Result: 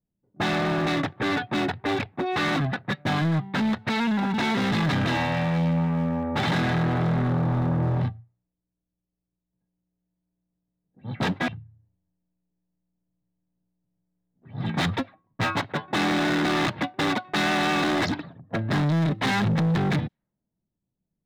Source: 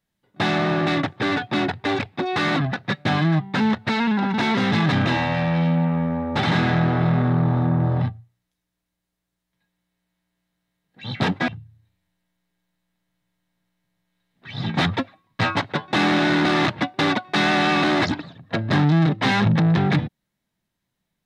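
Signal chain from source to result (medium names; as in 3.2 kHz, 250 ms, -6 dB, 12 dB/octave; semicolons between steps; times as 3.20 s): level-controlled noise filter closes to 440 Hz, open at -16.5 dBFS; in parallel at -3 dB: wavefolder -19 dBFS; on the sum: trim -6.5 dB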